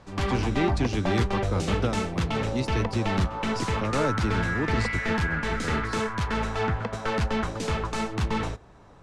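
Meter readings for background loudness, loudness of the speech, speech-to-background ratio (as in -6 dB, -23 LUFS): -28.5 LUFS, -31.0 LUFS, -2.5 dB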